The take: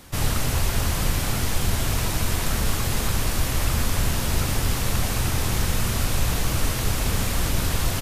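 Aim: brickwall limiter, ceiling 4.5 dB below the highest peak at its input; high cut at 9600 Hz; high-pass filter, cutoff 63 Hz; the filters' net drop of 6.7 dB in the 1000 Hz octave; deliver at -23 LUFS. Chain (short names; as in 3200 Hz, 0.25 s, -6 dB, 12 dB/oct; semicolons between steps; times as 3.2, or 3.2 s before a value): HPF 63 Hz; LPF 9600 Hz; bell 1000 Hz -9 dB; gain +5 dB; limiter -13 dBFS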